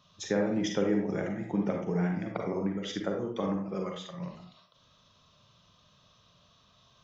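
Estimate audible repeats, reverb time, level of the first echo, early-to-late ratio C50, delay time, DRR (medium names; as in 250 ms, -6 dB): no echo, 0.50 s, no echo, 3.0 dB, no echo, 1.5 dB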